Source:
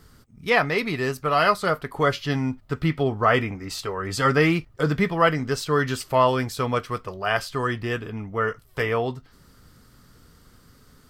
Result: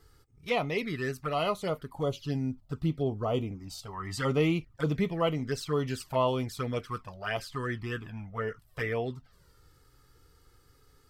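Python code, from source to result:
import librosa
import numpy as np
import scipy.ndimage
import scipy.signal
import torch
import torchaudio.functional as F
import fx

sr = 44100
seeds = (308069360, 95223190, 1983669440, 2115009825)

y = fx.env_flanger(x, sr, rest_ms=2.5, full_db=-18.0)
y = fx.peak_eq(y, sr, hz=1900.0, db=-13.5, octaves=1.1, at=(1.83, 3.93))
y = y * 10.0 ** (-5.5 / 20.0)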